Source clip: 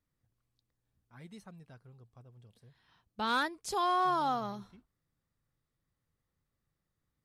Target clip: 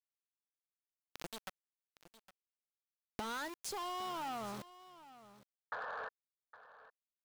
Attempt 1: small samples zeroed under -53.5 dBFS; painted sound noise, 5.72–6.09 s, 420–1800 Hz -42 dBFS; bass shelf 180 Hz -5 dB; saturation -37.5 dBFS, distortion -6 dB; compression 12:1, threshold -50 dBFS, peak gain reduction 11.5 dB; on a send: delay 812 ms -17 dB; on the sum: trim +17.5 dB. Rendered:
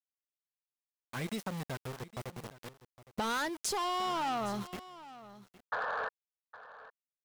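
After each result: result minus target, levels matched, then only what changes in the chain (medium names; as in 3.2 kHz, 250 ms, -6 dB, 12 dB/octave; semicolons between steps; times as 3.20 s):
compression: peak gain reduction -8 dB; small samples zeroed: distortion -8 dB
change: compression 12:1, threshold -58.5 dBFS, peak gain reduction 19 dB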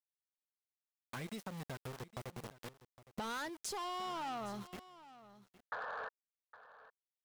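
small samples zeroed: distortion -8 dB
change: small samples zeroed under -43.5 dBFS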